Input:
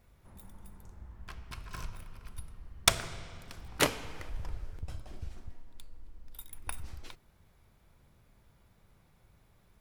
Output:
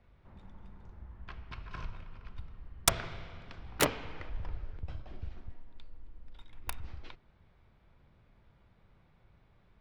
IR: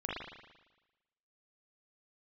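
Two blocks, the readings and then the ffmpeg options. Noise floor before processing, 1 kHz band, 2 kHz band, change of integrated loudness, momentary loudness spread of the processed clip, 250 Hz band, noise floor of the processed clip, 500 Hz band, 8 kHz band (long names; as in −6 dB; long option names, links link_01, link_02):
−65 dBFS, −0.5 dB, −2.5 dB, −2.0 dB, 24 LU, 0.0 dB, −65 dBFS, 0.0 dB, −1.0 dB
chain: -filter_complex "[0:a]acrossover=split=160|1600|4300[link_01][link_02][link_03][link_04];[link_03]alimiter=limit=-21.5dB:level=0:latency=1:release=79[link_05];[link_04]acrusher=bits=4:mix=0:aa=0.000001[link_06];[link_01][link_02][link_05][link_06]amix=inputs=4:normalize=0"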